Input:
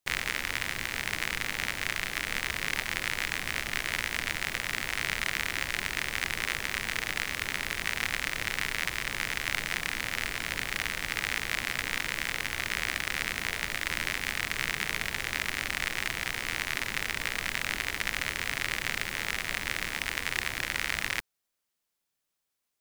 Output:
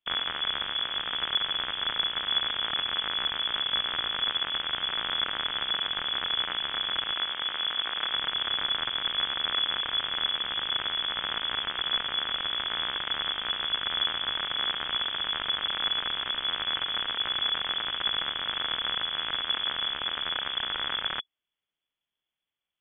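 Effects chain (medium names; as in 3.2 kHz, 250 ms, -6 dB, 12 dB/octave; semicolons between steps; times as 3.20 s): tilt EQ -2.5 dB/octave; frequency inversion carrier 3.4 kHz; 7.13–8.15 s: bass shelf 190 Hz -10.5 dB; trim -1 dB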